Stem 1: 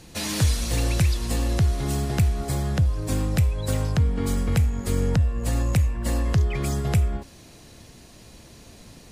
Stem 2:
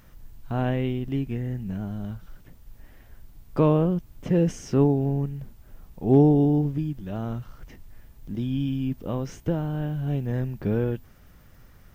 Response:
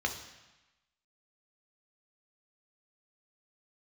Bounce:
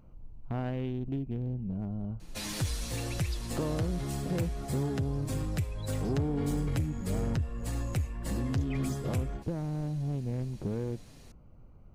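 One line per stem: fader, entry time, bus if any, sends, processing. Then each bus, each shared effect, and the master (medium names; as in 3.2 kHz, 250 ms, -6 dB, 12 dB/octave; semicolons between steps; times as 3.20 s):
-4.5 dB, 2.20 s, no send, flange 1.8 Hz, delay 6.1 ms, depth 2.6 ms, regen -37%
-2.0 dB, 0.00 s, no send, local Wiener filter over 25 samples; compression, threshold -27 dBFS, peak gain reduction 13.5 dB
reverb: none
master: saturation -22.5 dBFS, distortion -18 dB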